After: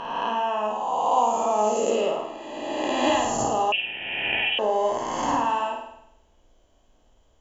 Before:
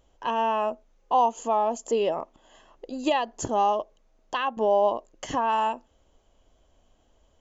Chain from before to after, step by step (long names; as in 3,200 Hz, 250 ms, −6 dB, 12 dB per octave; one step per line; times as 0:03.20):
peak hold with a rise ahead of every peak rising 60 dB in 1.96 s
flutter between parallel walls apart 8.9 metres, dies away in 0.76 s
0:03.72–0:04.59: voice inversion scrambler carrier 3,500 Hz
level −3.5 dB